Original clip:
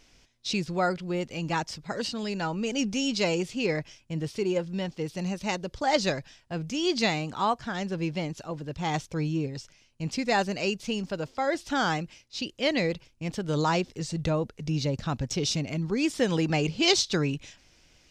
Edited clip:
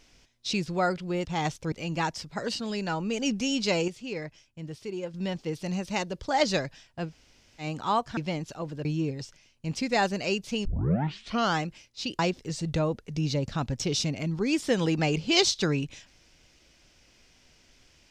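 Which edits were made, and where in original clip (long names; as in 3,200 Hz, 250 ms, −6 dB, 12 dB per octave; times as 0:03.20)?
0:03.41–0:04.67: clip gain −7.5 dB
0:06.61–0:07.16: fill with room tone, crossfade 0.10 s
0:07.70–0:08.06: remove
0:08.74–0:09.21: move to 0:01.25
0:11.01: tape start 0.88 s
0:12.55–0:13.70: remove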